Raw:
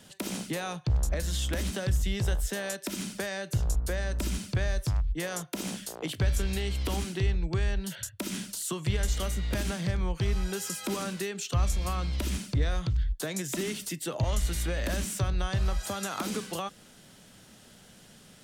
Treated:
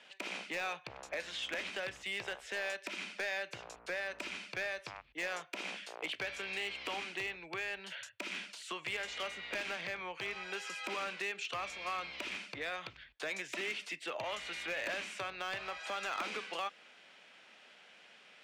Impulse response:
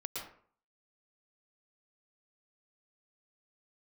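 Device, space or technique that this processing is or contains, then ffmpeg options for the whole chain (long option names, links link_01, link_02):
megaphone: -af "highpass=610,lowpass=3300,equalizer=frequency=2400:width_type=o:width=0.52:gain=9.5,asoftclip=type=hard:threshold=-29.5dB,volume=-1.5dB"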